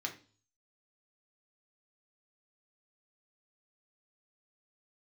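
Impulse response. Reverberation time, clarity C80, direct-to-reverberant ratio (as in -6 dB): 0.40 s, 17.5 dB, 1.0 dB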